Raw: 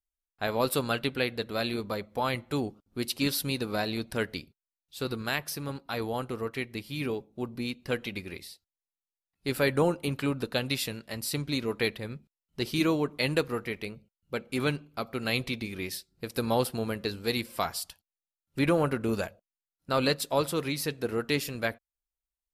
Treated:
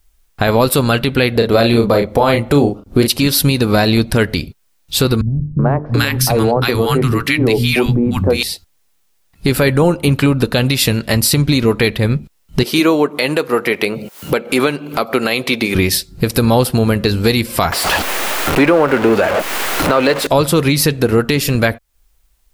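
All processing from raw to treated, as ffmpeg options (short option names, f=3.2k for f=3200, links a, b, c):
-filter_complex "[0:a]asettb=1/sr,asplit=3[a][b][c];[a]atrim=end=1.354[d];[b]atrim=start=1.35:end=3.08,asetpts=PTS-STARTPTS,afade=t=in:d=0.004:c=qsin,afade=t=out:st=1.726:d=0.004:c=qsin,equalizer=f=510:t=o:w=1.7:g=7,asplit=2[e][f];[f]adelay=35,volume=-6dB[g];[e][g]amix=inputs=2:normalize=0,atrim=end_sample=76293[h];[c]atrim=start=3.076[i];[d][h]acrossfade=d=0.004:c1=hsin:c2=qsin[j];[j][i]acrossfade=d=0.004:c1=qsin:c2=hsin,asettb=1/sr,asplit=3[k][l][m];[k]atrim=end=5.214[n];[l]atrim=start=5.21:end=8.43,asetpts=PTS-STARTPTS,afade=t=in:d=0.004:c=qsin,afade=t=out:st=3.216:d=0.004:c=qsin,bandreject=f=50:t=h:w=6,bandreject=f=100:t=h:w=6,bandreject=f=150:t=h:w=6,bandreject=f=200:t=h:w=6,bandreject=f=250:t=h:w=6,bandreject=f=300:t=h:w=6,bandreject=f=350:t=h:w=6,bandreject=f=400:t=h:w=6,bandreject=f=450:t=h:w=6,acrossover=split=200|990[o][p][q];[p]adelay=380[r];[q]adelay=730[s];[o][r][s]amix=inputs=3:normalize=0,atrim=end_sample=142002[t];[m]atrim=start=8.426[u];[n][t]acrossfade=d=0.004:c1=hsin:c2=qsin[v];[v][u]acrossfade=d=0.004:c1=qsin:c2=hsin,asettb=1/sr,asplit=3[w][x][y];[w]atrim=end=12.634[z];[x]atrim=start=12.63:end=15.75,asetpts=PTS-STARTPTS,afade=t=in:d=0.004:c=qsin,afade=t=out:st=3.116:d=0.004:c=qsin,highpass=350,equalizer=f=5.4k:w=0.41:g=-3.5,acompressor=mode=upward:threshold=-38dB:ratio=2.5:attack=3.2:release=140:knee=2.83:detection=peak[aa];[y]atrim=start=15.746[ab];[z][aa]acrossfade=d=0.004:c1=hsin:c2=qsin[ac];[ac][ab]acrossfade=d=0.004:c1=qsin:c2=hsin,asettb=1/sr,asplit=3[ad][ae][af];[ad]atrim=end=17.724[ag];[ae]atrim=start=17.72:end=20.27,asetpts=PTS-STARTPTS,afade=t=in:d=0.004:c=qsin,afade=t=out:st=2.546:d=0.004:c=qsin,aeval=exprs='val(0)+0.5*0.0398*sgn(val(0))':c=same,acrossover=split=290 2800:gain=0.1 1 0.224[ah][ai][aj];[ah][ai][aj]amix=inputs=3:normalize=0[ak];[af]atrim=start=20.266[al];[ag][ak]acrossfade=d=0.004:c1=hsin:c2=qsin[am];[am][al]acrossfade=d=0.004:c1=qsin:c2=hsin,lowshelf=f=130:g=10.5,acompressor=threshold=-42dB:ratio=3,alimiter=level_in=30dB:limit=-1dB:release=50:level=0:latency=1,volume=-1dB"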